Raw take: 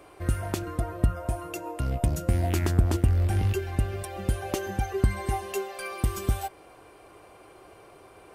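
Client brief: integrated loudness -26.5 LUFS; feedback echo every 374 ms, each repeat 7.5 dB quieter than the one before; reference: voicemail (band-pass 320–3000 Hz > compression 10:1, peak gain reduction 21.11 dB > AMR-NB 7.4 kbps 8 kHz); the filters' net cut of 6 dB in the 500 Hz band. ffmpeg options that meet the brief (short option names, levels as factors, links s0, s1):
-af "highpass=320,lowpass=3000,equalizer=f=500:t=o:g=-7,aecho=1:1:374|748|1122|1496|1870:0.422|0.177|0.0744|0.0312|0.0131,acompressor=threshold=0.00355:ratio=10,volume=25.1" -ar 8000 -c:a libopencore_amrnb -b:a 7400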